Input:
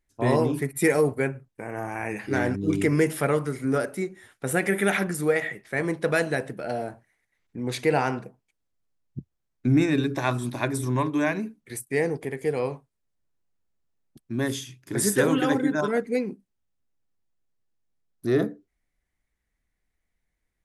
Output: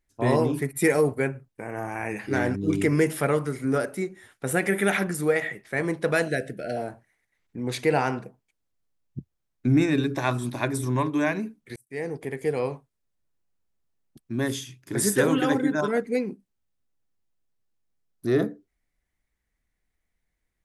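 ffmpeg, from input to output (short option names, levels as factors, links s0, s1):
-filter_complex "[0:a]asettb=1/sr,asplit=3[s0][s1][s2];[s0]atrim=end=6.284[s3];[s1]atrim=start=6.28:end=6.77,asetpts=PTS-STARTPTS,afade=t=in:d=0.004:c=qsin,afade=t=out:st=0.486:d=0.004:c=qsin,asuperstop=centerf=1000:order=8:qfactor=1.5[s4];[s2]atrim=start=6.766[s5];[s3][s4]acrossfade=d=0.004:c1=hsin:c2=qsin[s6];[s6][s5]acrossfade=d=0.004:c1=qsin:c2=hsin,asplit=2[s7][s8];[s7]atrim=end=11.76,asetpts=PTS-STARTPTS,afade=t=out:st=11.756:d=0.004:c=hsin[s9];[s8]atrim=start=11.76,asetpts=PTS-STARTPTS,afade=t=in:d=0.58[s10];[s9][s10]concat=n=2:v=0:a=1"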